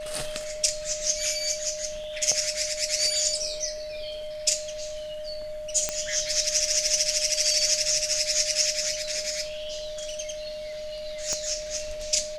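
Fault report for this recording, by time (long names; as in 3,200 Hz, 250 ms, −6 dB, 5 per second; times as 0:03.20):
whistle 610 Hz −33 dBFS
0:05.89: click −10 dBFS
0:11.33: click −16 dBFS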